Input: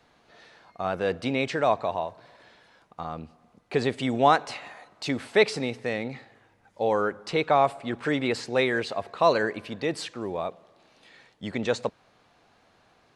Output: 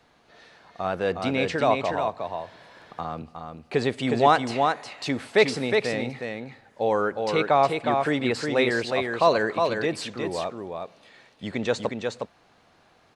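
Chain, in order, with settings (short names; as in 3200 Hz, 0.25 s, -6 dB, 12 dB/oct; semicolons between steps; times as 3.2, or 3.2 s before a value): echo 0.362 s -4.5 dB; 1.93–3.22 three-band squash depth 40%; gain +1 dB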